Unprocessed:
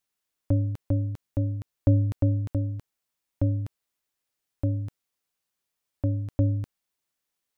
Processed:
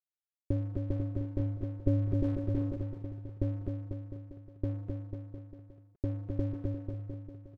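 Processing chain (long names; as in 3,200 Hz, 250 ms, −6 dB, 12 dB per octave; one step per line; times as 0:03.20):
low-shelf EQ 65 Hz +9 dB
comb filter 5.3 ms, depth 47%
in parallel at −1 dB: brickwall limiter −16.5 dBFS, peak gain reduction 8.5 dB
on the sum: transistor ladder low-pass 440 Hz, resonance 65%
dead-zone distortion −49 dBFS
on a send: bouncing-ball delay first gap 260 ms, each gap 0.9×, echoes 5
0:01.90–0:02.76: on the sum: level that may fall only so fast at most 38 dB per second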